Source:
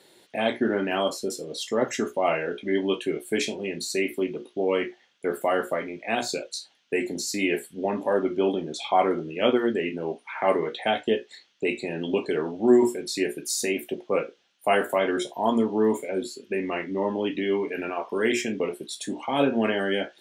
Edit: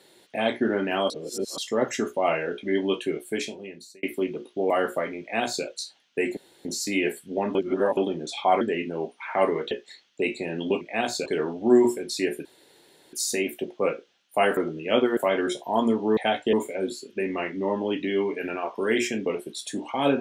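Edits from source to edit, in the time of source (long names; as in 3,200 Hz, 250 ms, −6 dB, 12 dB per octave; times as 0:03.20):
0:01.10–0:01.58: reverse
0:03.06–0:04.03: fade out
0:04.70–0:05.45: remove
0:05.95–0:06.40: duplicate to 0:12.24
0:07.12: splice in room tone 0.28 s
0:08.02–0:08.44: reverse
0:09.08–0:09.68: move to 0:14.87
0:10.78–0:11.14: move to 0:15.87
0:13.43: splice in room tone 0.68 s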